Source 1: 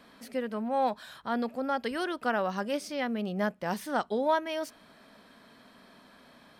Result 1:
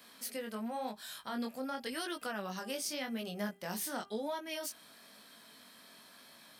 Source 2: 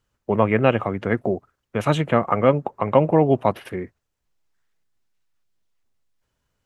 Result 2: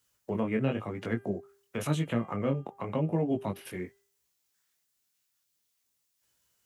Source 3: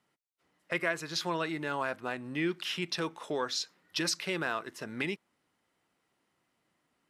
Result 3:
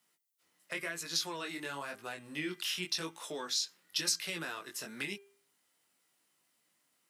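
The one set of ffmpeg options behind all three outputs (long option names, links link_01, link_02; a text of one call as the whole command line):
ffmpeg -i in.wav -filter_complex "[0:a]flanger=delay=17.5:depth=5.3:speed=0.93,acrossover=split=370[link_01][link_02];[link_02]acompressor=threshold=-39dB:ratio=3[link_03];[link_01][link_03]amix=inputs=2:normalize=0,highpass=frequency=120:poles=1,crystalizer=i=5.5:c=0,bandreject=frequency=398.7:width_type=h:width=4,bandreject=frequency=797.4:width_type=h:width=4,bandreject=frequency=1196.1:width_type=h:width=4,bandreject=frequency=1594.8:width_type=h:width=4,bandreject=frequency=1993.5:width_type=h:width=4,bandreject=frequency=2392.2:width_type=h:width=4,bandreject=frequency=2790.9:width_type=h:width=4,bandreject=frequency=3189.6:width_type=h:width=4,volume=-3.5dB" out.wav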